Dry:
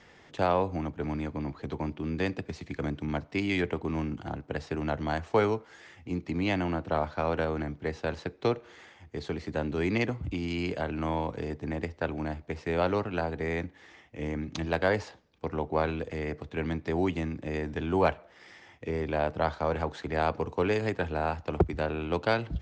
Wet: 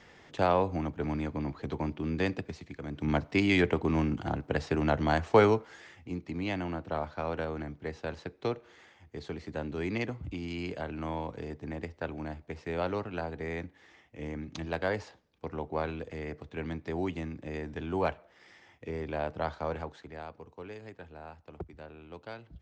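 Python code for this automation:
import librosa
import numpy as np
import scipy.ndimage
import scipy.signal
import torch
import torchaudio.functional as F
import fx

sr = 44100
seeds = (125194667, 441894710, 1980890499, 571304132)

y = fx.gain(x, sr, db=fx.line((2.36, 0.0), (2.84, -9.0), (3.08, 3.5), (5.57, 3.5), (6.21, -5.0), (19.71, -5.0), (20.3, -17.0)))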